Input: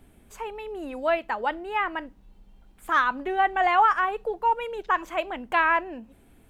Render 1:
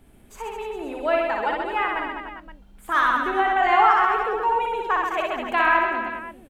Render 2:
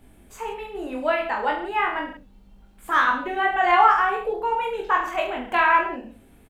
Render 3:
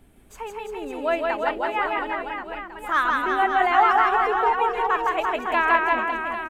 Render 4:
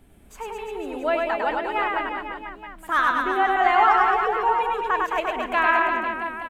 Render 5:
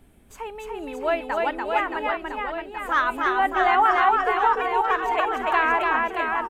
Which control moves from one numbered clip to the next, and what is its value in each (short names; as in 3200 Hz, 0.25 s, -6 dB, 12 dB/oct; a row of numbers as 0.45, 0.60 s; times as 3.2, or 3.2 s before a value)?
reverse bouncing-ball echo, first gap: 60, 20, 160, 100, 290 ms